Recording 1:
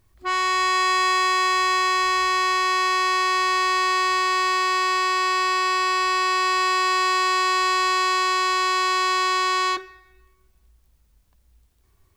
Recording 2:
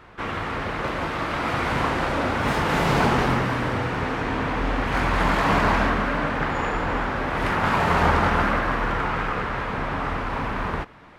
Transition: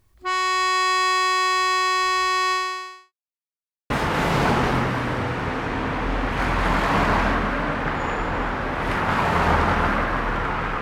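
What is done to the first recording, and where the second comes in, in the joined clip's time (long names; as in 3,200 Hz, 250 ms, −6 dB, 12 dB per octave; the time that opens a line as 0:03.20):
recording 1
0:02.52–0:03.13: fade out quadratic
0:03.13–0:03.90: silence
0:03.90: continue with recording 2 from 0:02.45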